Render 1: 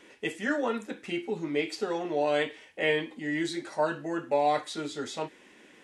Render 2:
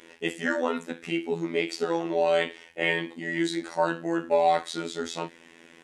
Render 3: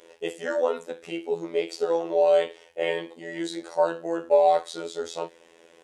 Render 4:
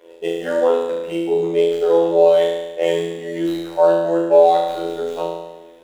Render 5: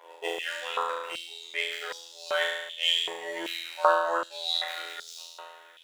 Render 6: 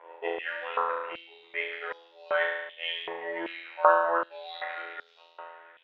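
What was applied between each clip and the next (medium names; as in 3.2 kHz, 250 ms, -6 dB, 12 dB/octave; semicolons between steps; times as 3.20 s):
robot voice 83.7 Hz; trim +5 dB
graphic EQ 125/250/500/2000 Hz -5/-11/+10/-7 dB; trim -1.5 dB
median filter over 9 samples; flutter echo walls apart 6.1 m, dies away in 1.1 s; trim +4.5 dB
step-sequenced high-pass 2.6 Hz 900–5100 Hz; trim -1.5 dB
low-pass 2.3 kHz 24 dB/octave; trim +1.5 dB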